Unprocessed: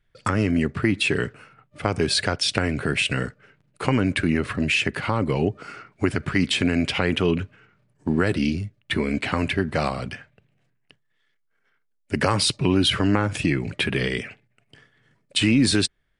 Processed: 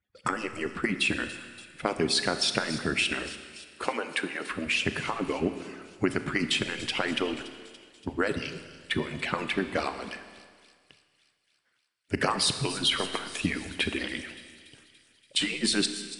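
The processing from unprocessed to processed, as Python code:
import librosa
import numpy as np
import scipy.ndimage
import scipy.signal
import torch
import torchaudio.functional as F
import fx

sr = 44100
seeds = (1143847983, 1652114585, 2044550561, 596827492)

y = fx.hpss_only(x, sr, part='percussive')
y = fx.highpass(y, sr, hz=280.0, slope=12, at=(3.84, 4.47))
y = fx.echo_wet_highpass(y, sr, ms=286, feedback_pct=65, hz=5000.0, wet_db=-10.5)
y = fx.rev_schroeder(y, sr, rt60_s=1.8, comb_ms=26, drr_db=9.0)
y = y * librosa.db_to_amplitude(-3.5)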